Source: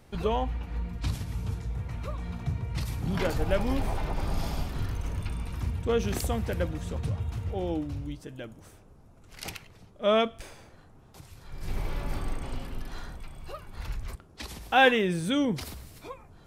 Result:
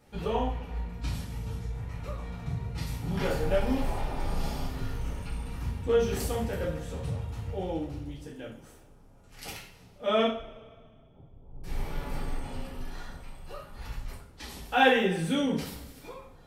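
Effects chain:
0:10.28–0:11.64: Bessel low-pass filter 520 Hz, order 8
coupled-rooms reverb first 0.46 s, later 1.9 s, from −20 dB, DRR −6 dB
level −8 dB

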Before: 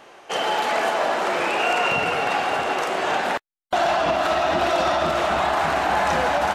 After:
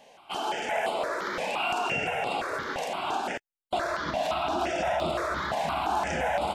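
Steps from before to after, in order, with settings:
step-sequenced phaser 5.8 Hz 350–6,000 Hz
level −4.5 dB

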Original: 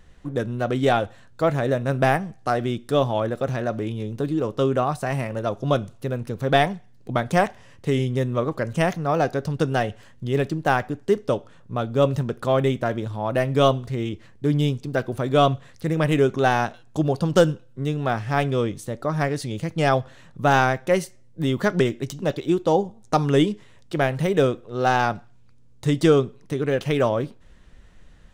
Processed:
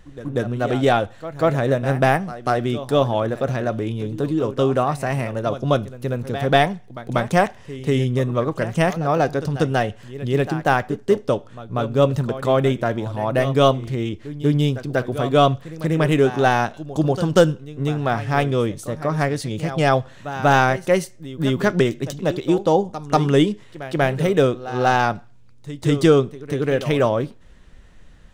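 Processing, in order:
echo ahead of the sound 190 ms −14 dB
level +2.5 dB

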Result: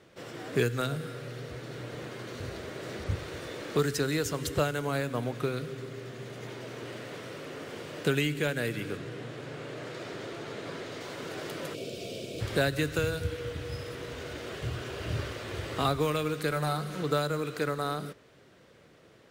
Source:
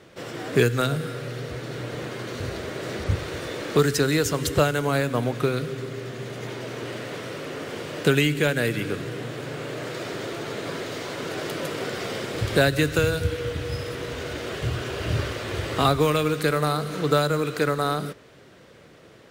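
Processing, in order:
0:08.97–0:11.01: high-shelf EQ 11,000 Hz −11.5 dB
0:11.74–0:12.41: gain on a spectral selection 720–2,200 Hz −18 dB
0:16.51–0:17.03: comb filter 5.5 ms, depth 59%
level −7.5 dB

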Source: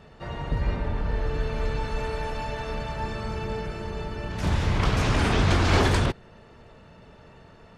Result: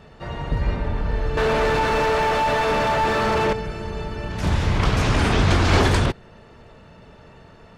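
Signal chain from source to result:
0:01.37–0:03.53: mid-hump overdrive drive 34 dB, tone 1,300 Hz, clips at −15 dBFS
level +3.5 dB

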